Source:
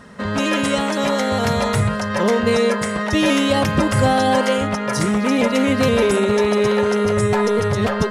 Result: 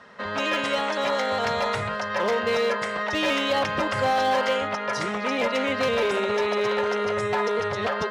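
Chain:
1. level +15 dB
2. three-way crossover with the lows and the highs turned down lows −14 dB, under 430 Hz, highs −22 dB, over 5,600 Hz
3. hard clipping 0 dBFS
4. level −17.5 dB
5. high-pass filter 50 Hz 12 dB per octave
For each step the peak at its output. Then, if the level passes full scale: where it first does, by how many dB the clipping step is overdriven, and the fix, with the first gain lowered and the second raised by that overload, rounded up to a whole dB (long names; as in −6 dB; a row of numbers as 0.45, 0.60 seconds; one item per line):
+7.5, +7.0, 0.0, −17.5, −16.0 dBFS
step 1, 7.0 dB
step 1 +8 dB, step 4 −10.5 dB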